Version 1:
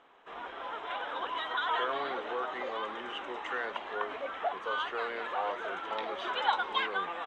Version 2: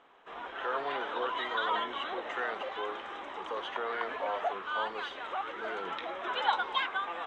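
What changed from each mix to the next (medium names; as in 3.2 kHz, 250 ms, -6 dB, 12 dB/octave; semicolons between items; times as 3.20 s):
speech: entry -1.15 s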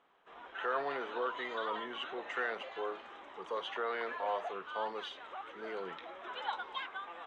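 background -9.5 dB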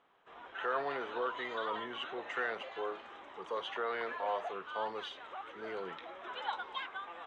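master: add peaking EQ 110 Hz +14.5 dB 0.32 oct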